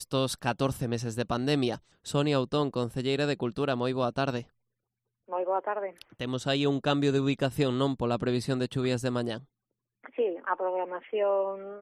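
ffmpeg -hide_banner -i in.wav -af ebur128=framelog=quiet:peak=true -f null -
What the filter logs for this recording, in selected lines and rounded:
Integrated loudness:
  I:         -29.6 LUFS
  Threshold: -39.8 LUFS
Loudness range:
  LRA:         3.2 LU
  Threshold: -50.0 LUFS
  LRA low:   -31.5 LUFS
  LRA high:  -28.3 LUFS
True peak:
  Peak:      -12.5 dBFS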